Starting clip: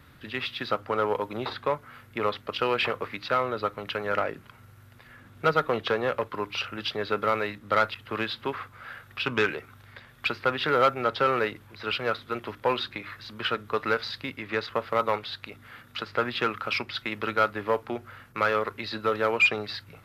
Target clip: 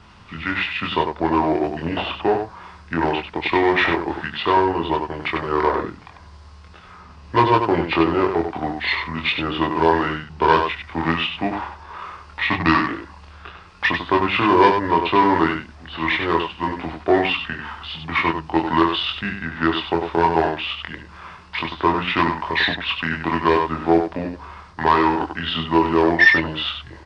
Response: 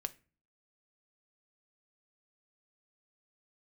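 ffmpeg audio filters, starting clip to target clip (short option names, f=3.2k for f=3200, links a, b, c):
-filter_complex "[0:a]lowpass=f=6.6k:t=q:w=3.3,asplit=2[a][b];[b]aecho=0:1:18|71:0.668|0.501[c];[a][c]amix=inputs=2:normalize=0,asetrate=32667,aresample=44100,volume=5.5dB"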